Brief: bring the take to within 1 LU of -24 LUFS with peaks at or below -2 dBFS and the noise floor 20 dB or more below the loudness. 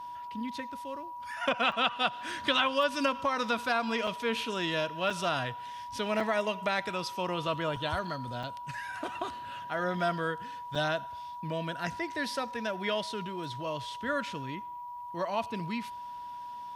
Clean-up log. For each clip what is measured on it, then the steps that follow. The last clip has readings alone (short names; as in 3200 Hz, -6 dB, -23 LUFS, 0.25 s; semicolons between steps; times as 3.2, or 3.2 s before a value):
dropouts 7; longest dropout 4.4 ms; steady tone 970 Hz; tone level -39 dBFS; loudness -32.5 LUFS; peak -13.0 dBFS; loudness target -24.0 LUFS
-> interpolate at 1.72/4.07/5.1/6.2/7.76/8.43/10.75, 4.4 ms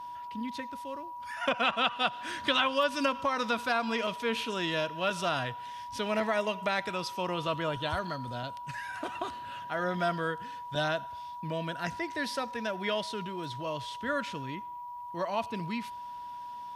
dropouts 0; steady tone 970 Hz; tone level -39 dBFS
-> notch 970 Hz, Q 30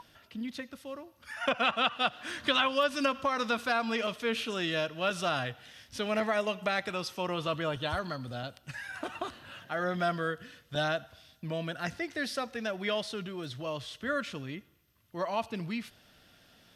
steady tone none; loudness -32.5 LUFS; peak -13.0 dBFS; loudness target -24.0 LUFS
-> gain +8.5 dB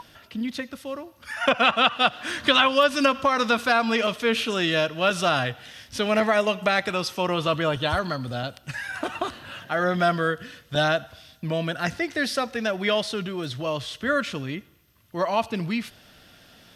loudness -24.0 LUFS; peak -4.5 dBFS; noise floor -55 dBFS